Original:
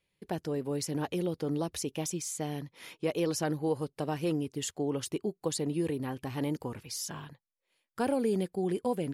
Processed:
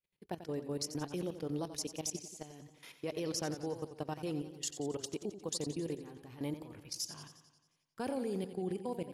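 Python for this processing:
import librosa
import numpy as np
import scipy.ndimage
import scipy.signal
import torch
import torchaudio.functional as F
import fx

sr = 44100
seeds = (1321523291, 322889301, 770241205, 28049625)

y = fx.dynamic_eq(x, sr, hz=5300.0, q=1.5, threshold_db=-53.0, ratio=4.0, max_db=8)
y = fx.level_steps(y, sr, step_db=16)
y = fx.echo_warbled(y, sr, ms=89, feedback_pct=60, rate_hz=2.8, cents=80, wet_db=-11.5)
y = y * 10.0 ** (-4.5 / 20.0)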